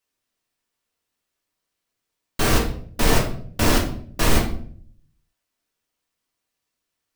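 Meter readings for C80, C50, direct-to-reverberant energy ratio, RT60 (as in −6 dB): 11.5 dB, 7.0 dB, −2.0 dB, 0.55 s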